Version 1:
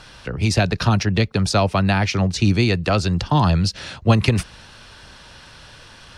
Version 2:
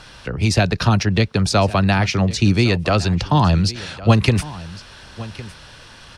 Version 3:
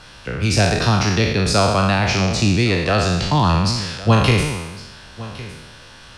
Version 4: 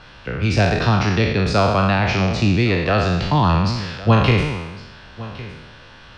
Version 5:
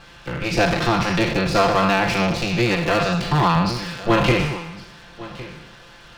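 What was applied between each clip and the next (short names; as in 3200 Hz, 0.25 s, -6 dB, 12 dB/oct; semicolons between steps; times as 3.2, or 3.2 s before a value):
echo 1.109 s -17.5 dB; gain +1.5 dB
spectral trails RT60 1.10 s; gain -2.5 dB
LPF 3500 Hz 12 dB/oct
minimum comb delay 5.8 ms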